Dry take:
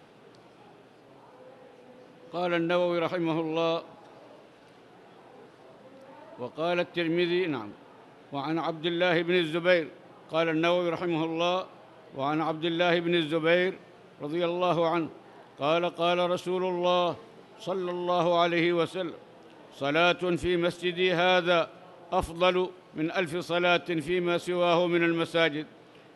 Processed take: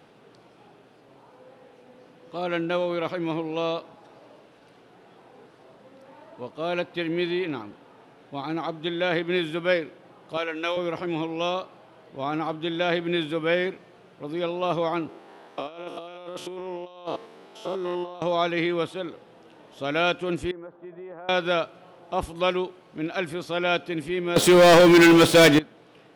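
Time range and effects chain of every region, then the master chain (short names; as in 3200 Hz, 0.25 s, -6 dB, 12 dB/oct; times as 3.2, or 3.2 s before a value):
10.37–10.77 HPF 450 Hz + bell 720 Hz -5.5 dB 0.43 oct
15.09–18.22 stepped spectrum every 0.1 s + HPF 230 Hz + negative-ratio compressor -33 dBFS, ratio -0.5
20.51–21.29 LPF 1100 Hz 24 dB/oct + tilt +4 dB/oct + compressor, threshold -37 dBFS
24.36–25.59 HPF 47 Hz + high shelf 8600 Hz +6.5 dB + sample leveller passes 5
whole clip: dry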